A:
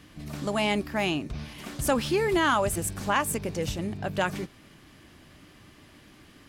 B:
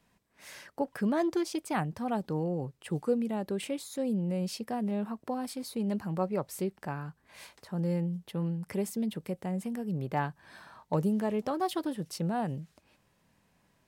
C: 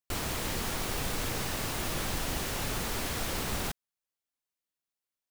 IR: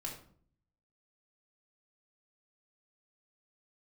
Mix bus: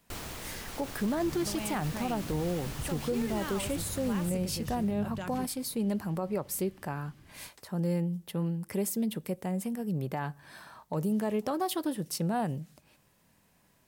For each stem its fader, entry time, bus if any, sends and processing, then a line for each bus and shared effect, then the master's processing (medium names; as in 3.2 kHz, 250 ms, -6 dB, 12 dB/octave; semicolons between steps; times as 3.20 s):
-11.0 dB, 1.00 s, no send, no echo send, tone controls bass +11 dB, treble +3 dB; compression, threshold -23 dBFS, peak gain reduction 7 dB
+1.0 dB, 0.00 s, send -21 dB, no echo send, treble shelf 9 kHz +12 dB
-5.0 dB, 0.00 s, no send, echo send -7 dB, auto duck -7 dB, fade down 0.90 s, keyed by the second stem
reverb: on, RT60 0.55 s, pre-delay 3 ms
echo: feedback delay 579 ms, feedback 29%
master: peak limiter -22.5 dBFS, peak gain reduction 7 dB